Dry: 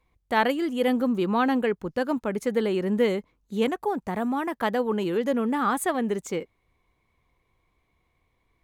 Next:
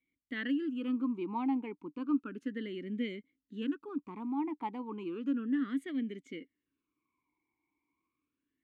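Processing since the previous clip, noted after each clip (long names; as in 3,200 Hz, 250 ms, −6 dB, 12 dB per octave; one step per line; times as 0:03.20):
formant filter swept between two vowels i-u 0.33 Hz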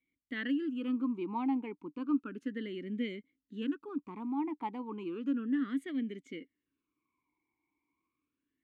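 no processing that can be heard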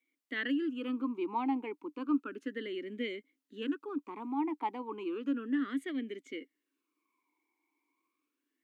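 high-pass filter 290 Hz 24 dB per octave
level +3.5 dB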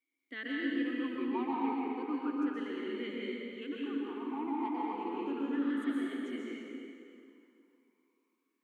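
dense smooth reverb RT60 2.7 s, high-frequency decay 0.8×, pre-delay 110 ms, DRR −5.5 dB
level −6.5 dB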